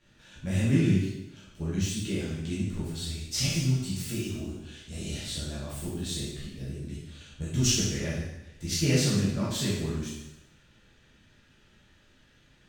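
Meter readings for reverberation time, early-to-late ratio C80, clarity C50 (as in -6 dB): 1.0 s, 3.5 dB, 0.0 dB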